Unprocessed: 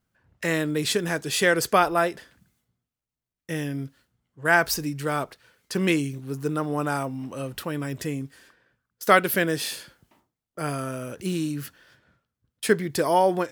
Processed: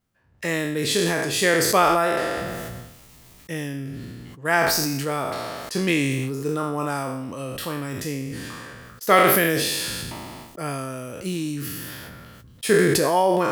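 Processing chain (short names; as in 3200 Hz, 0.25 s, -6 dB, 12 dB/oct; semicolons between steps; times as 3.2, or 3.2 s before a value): spectral trails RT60 0.70 s; notch 1500 Hz, Q 12; sustainer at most 21 dB/s; gain -1 dB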